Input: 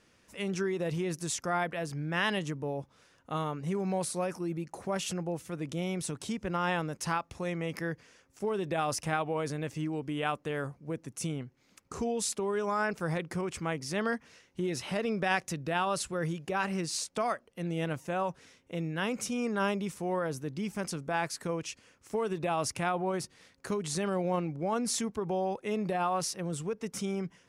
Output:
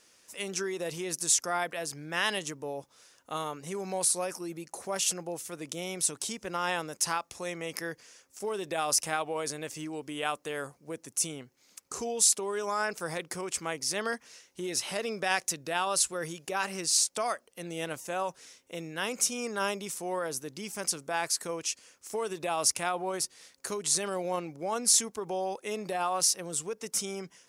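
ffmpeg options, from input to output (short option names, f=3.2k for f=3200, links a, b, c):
-af "bass=f=250:g=-12,treble=f=4k:g=12"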